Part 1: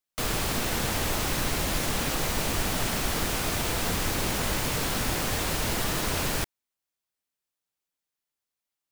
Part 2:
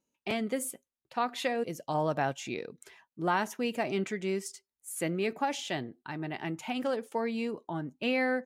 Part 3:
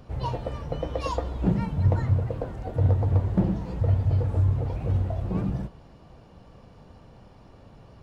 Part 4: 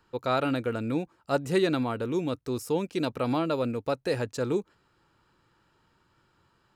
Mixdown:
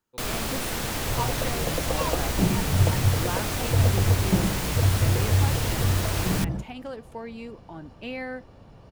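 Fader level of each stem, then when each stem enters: -1.5, -5.5, +0.5, -18.5 dB; 0.00, 0.00, 0.95, 0.00 s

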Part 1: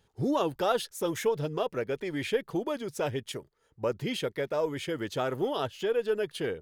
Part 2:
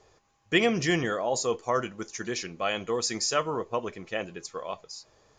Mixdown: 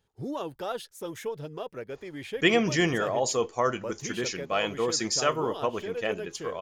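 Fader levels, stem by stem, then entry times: -6.5, +1.0 dB; 0.00, 1.90 s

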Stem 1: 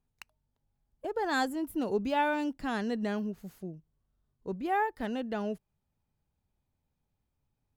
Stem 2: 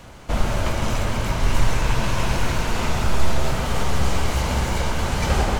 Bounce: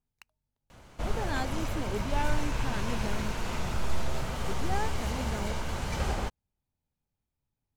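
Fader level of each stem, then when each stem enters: -5.5, -10.5 dB; 0.00, 0.70 s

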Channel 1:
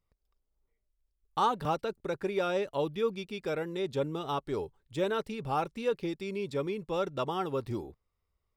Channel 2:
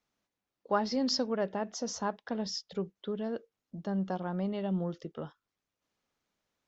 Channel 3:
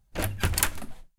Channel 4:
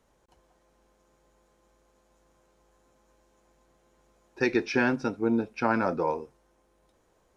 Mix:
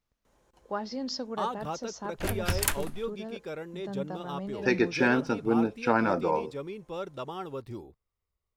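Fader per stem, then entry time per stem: -5.0, -4.5, -3.0, +0.5 dB; 0.00, 0.00, 2.05, 0.25 s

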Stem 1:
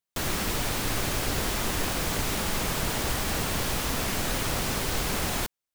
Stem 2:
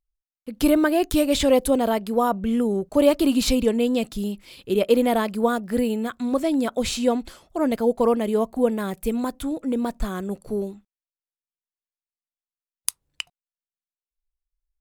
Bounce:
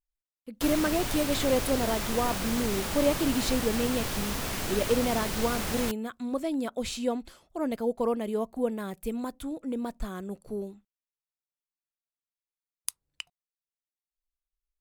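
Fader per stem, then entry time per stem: -4.0, -8.0 dB; 0.45, 0.00 s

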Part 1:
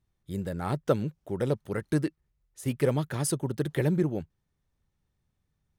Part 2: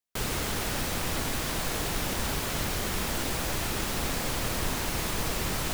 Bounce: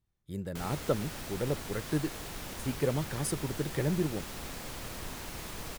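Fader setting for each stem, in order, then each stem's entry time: -4.5, -11.0 dB; 0.00, 0.40 s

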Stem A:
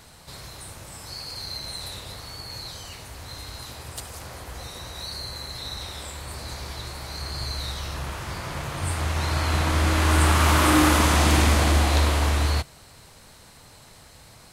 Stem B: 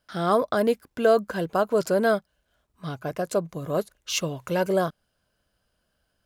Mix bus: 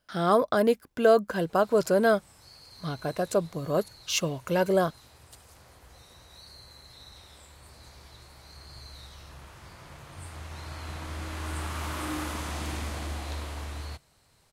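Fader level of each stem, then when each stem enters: -15.5, -0.5 dB; 1.35, 0.00 s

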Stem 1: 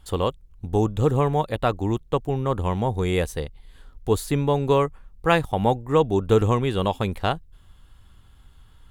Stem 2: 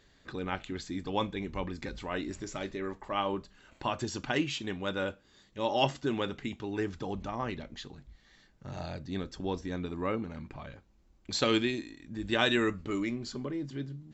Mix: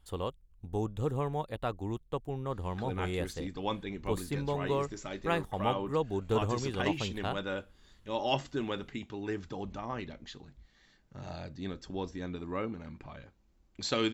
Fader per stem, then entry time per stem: -12.0, -3.0 dB; 0.00, 2.50 s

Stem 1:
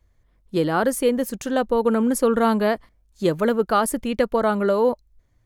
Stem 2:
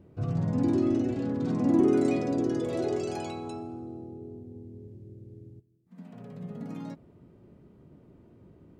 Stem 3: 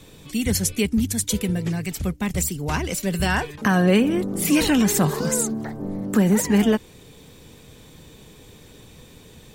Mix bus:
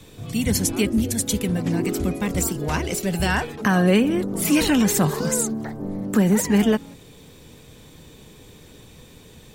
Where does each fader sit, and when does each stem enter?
-20.0, -4.0, 0.0 dB; 0.00, 0.00, 0.00 s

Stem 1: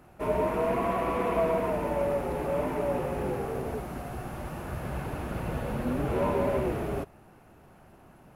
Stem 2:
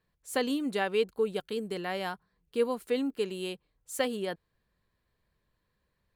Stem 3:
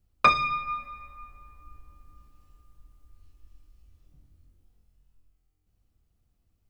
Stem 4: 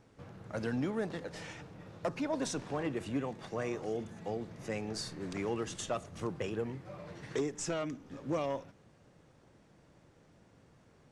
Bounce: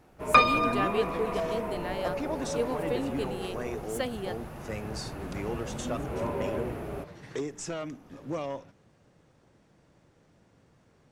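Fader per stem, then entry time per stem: -5.5, -3.0, +0.5, 0.0 dB; 0.00, 0.00, 0.10, 0.00 s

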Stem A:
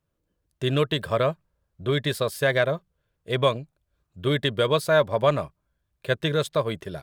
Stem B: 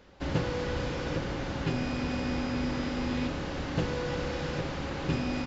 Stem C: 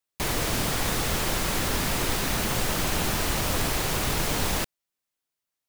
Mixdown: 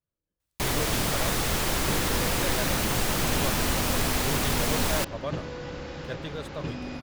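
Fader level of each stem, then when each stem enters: -13.5, -4.5, 0.0 dB; 0.00, 1.55, 0.40 s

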